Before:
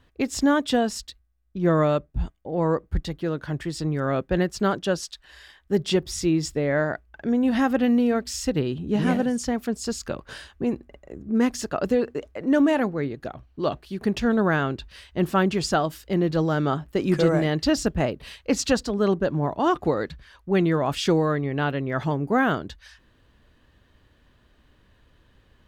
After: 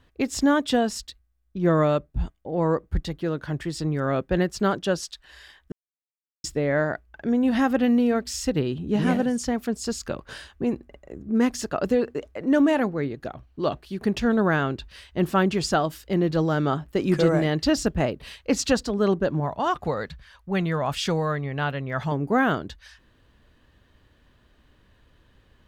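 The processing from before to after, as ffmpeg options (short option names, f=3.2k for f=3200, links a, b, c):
-filter_complex "[0:a]asettb=1/sr,asplit=3[a][b][c];[a]atrim=end=19.404[d];[b]atrim=start=19.4:end=22.12,asetpts=PTS-STARTPTS,afade=t=in:d=0.004:c=qsin,afade=t=out:st=2.716:d=0.004:c=qsin,equalizer=f=330:t=o:w=0.77:g=-10.5[e];[c]atrim=start=22.116[f];[d][e]acrossfade=d=0.004:c1=hsin:c2=qsin[g];[g][f]acrossfade=d=0.004:c1=qsin:c2=hsin,asplit=3[h][i][j];[h]atrim=end=5.72,asetpts=PTS-STARTPTS,afade=t=out:st=5.716:d=0.004:c=hsin[k];[i]atrim=start=5.72:end=6.44,asetpts=PTS-STARTPTS,volume=0[l];[j]atrim=start=6.44,asetpts=PTS-STARTPTS,afade=t=in:d=0.004:c=hsin[m];[k][l][m]concat=n=3:v=0:a=1"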